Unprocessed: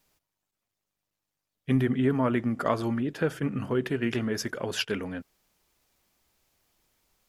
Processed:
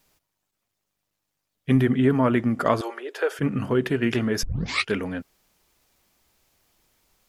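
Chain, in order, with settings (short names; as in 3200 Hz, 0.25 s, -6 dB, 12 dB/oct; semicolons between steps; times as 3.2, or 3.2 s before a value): 2.81–3.39 elliptic high-pass 390 Hz, stop band 50 dB; 4.43 tape start 0.46 s; gain +5 dB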